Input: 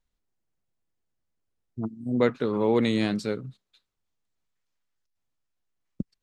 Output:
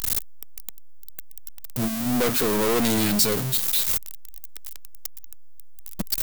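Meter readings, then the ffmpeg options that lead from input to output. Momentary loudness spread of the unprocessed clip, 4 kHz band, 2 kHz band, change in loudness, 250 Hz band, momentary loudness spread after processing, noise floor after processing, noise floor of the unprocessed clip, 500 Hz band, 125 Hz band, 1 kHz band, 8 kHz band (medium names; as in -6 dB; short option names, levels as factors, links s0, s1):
16 LU, +12.0 dB, +5.5 dB, +4.5 dB, +1.5 dB, 21 LU, -34 dBFS, -81 dBFS, +0.5 dB, +3.5 dB, +5.0 dB, no reading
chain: -af "aeval=exprs='val(0)+0.5*0.0237*sgn(val(0))':c=same,aeval=exprs='(tanh(22.4*val(0)+0.35)-tanh(0.35))/22.4':c=same,aemphasis=mode=production:type=75fm,volume=2.37"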